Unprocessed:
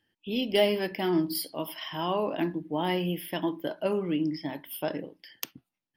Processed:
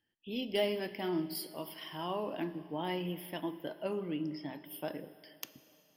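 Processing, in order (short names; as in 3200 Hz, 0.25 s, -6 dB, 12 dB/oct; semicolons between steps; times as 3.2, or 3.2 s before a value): plate-style reverb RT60 3.1 s, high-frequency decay 0.95×, DRR 13.5 dB; gain -8 dB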